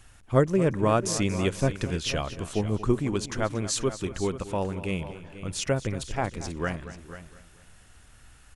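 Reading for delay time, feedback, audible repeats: 0.232 s, no steady repeat, 4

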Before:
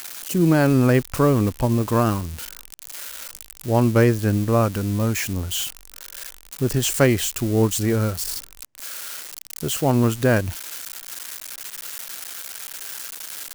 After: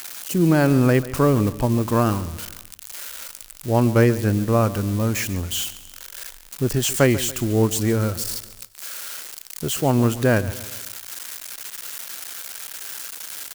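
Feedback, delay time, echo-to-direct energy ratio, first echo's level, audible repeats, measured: 46%, 0.141 s, -15.5 dB, -16.5 dB, 3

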